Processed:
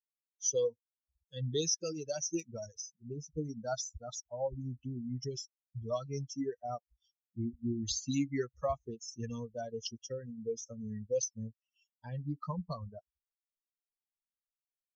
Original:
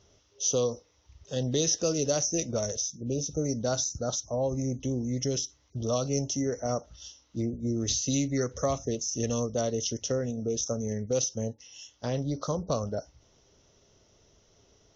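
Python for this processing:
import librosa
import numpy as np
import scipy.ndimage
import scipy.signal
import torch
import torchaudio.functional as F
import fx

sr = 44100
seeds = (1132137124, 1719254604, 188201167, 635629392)

y = fx.bin_expand(x, sr, power=3.0)
y = fx.dynamic_eq(y, sr, hz=440.0, q=0.72, threshold_db=-41.0, ratio=4.0, max_db=-5, at=(1.75, 2.19))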